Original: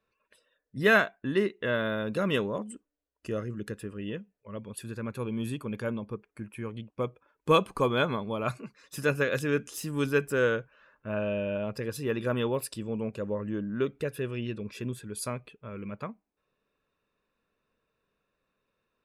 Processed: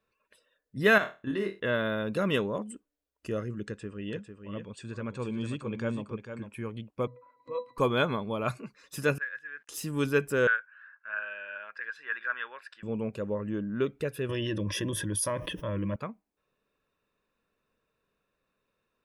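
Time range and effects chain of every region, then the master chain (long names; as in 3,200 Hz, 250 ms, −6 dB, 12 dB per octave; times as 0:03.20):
0:00.98–0:01.60: output level in coarse steps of 10 dB + flutter between parallel walls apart 4.4 metres, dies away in 0.27 s
0:03.65–0:06.54: Chebyshev low-pass filter 8,600 Hz, order 6 + single-tap delay 450 ms −8 dB
0:07.07–0:07.78: meter weighting curve A + upward compression, threshold −25 dBFS + resonances in every octave B, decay 0.17 s
0:09.18–0:09.69: centre clipping without the shift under −47 dBFS + resonant band-pass 1,700 Hz, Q 11
0:10.47–0:12.83: high-pass with resonance 1,600 Hz, resonance Q 7.3 + head-to-tape spacing loss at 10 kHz 31 dB
0:14.29–0:15.96: EQ curve with evenly spaced ripples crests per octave 1.2, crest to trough 15 dB + envelope flattener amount 70%
whole clip: no processing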